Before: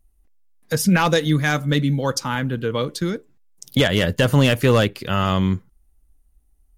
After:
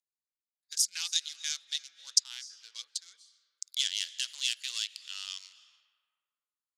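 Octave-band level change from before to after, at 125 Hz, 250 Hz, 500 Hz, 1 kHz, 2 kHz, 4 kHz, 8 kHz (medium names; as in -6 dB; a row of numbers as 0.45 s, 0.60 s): under -40 dB, under -40 dB, under -40 dB, under -35 dB, -19.5 dB, -4.5 dB, +0.5 dB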